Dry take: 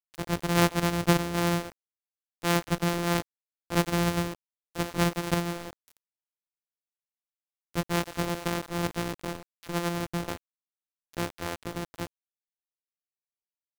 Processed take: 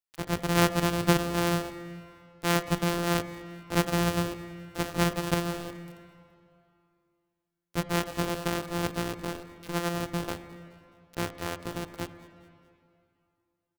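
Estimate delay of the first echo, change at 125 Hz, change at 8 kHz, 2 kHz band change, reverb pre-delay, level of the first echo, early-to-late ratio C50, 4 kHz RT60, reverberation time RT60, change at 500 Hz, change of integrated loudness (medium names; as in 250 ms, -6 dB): 212 ms, -0.5 dB, 0.0 dB, 0.0 dB, 7 ms, -20.5 dB, 11.5 dB, 2.2 s, 2.5 s, +0.5 dB, -0.5 dB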